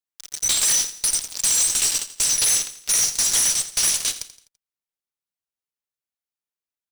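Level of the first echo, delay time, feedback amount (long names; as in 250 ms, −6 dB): −14.0 dB, 84 ms, 42%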